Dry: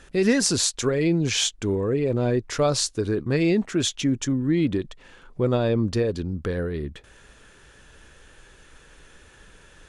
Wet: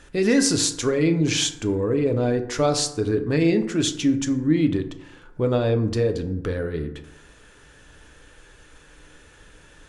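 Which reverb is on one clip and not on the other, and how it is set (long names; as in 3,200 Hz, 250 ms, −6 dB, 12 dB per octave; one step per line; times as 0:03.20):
feedback delay network reverb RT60 0.85 s, low-frequency decay 1×, high-frequency decay 0.45×, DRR 6.5 dB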